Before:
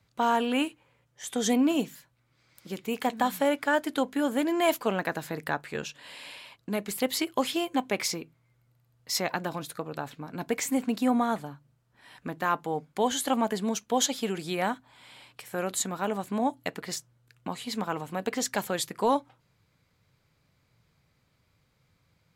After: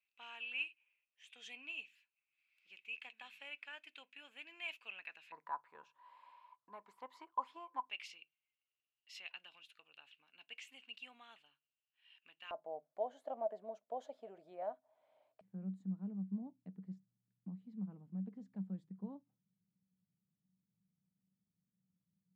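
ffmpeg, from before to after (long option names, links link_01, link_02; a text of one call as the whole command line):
ffmpeg -i in.wav -af "asetnsamples=nb_out_samples=441:pad=0,asendcmd='5.32 bandpass f 990;7.9 bandpass f 2800;12.51 bandpass f 630;15.41 bandpass f 190',bandpass=frequency=2600:width_type=q:width=15:csg=0" out.wav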